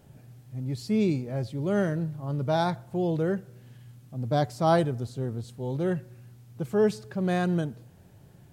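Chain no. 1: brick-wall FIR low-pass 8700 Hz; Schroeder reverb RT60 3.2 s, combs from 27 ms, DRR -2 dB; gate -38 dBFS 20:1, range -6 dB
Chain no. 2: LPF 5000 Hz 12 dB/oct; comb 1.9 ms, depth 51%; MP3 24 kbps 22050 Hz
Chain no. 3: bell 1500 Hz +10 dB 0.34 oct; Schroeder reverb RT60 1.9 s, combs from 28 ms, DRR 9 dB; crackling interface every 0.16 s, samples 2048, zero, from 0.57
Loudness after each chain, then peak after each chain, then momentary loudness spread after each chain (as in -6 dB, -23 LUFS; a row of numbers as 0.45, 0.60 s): -25.0, -28.5, -29.0 LUFS; -8.5, -11.5, -11.0 dBFS; 12, 11, 18 LU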